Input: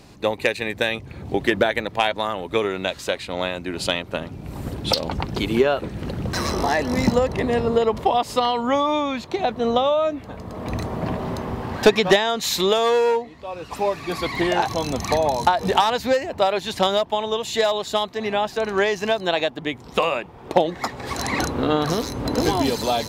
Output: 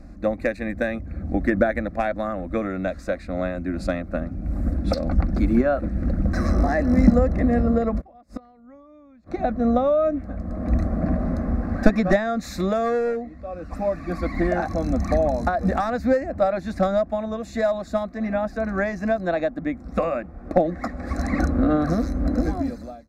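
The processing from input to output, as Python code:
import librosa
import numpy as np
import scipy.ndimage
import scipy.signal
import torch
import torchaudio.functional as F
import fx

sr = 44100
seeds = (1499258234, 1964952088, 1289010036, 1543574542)

y = fx.fade_out_tail(x, sr, length_s=1.05)
y = fx.riaa(y, sr, side='playback')
y = fx.gate_flip(y, sr, shuts_db=-15.0, range_db=-28, at=(8.0, 9.26), fade=0.02)
y = fx.fixed_phaser(y, sr, hz=620.0, stages=8)
y = F.gain(torch.from_numpy(y), -1.0).numpy()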